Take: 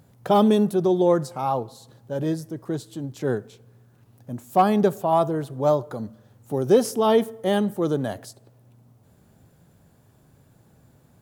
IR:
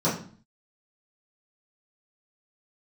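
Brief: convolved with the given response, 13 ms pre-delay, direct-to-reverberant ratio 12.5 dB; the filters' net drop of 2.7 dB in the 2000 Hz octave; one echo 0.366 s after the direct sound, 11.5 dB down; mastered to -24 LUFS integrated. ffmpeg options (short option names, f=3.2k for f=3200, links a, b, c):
-filter_complex "[0:a]equalizer=f=2k:t=o:g=-3.5,aecho=1:1:366:0.266,asplit=2[a][b];[1:a]atrim=start_sample=2205,adelay=13[c];[b][c]afir=irnorm=-1:irlink=0,volume=-26dB[d];[a][d]amix=inputs=2:normalize=0,volume=-2dB"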